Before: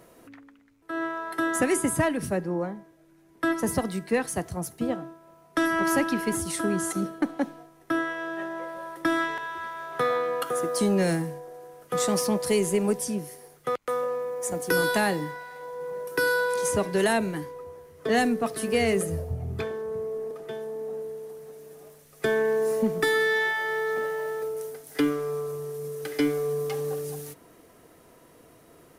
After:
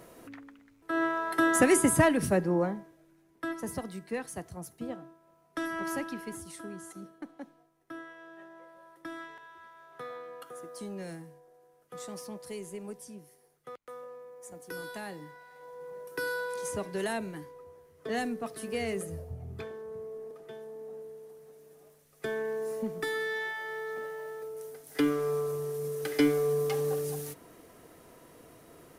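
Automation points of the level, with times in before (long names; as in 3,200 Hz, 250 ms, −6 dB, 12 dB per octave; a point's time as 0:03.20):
0:02.74 +1.5 dB
0:03.47 −10 dB
0:05.90 −10 dB
0:06.82 −17 dB
0:15.01 −17 dB
0:15.70 −9.5 dB
0:24.48 −9.5 dB
0:25.26 0 dB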